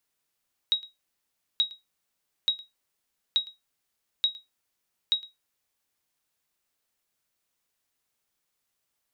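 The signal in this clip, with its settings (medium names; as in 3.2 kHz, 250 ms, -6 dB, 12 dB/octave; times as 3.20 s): sonar ping 3.81 kHz, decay 0.18 s, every 0.88 s, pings 6, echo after 0.11 s, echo -21.5 dB -15 dBFS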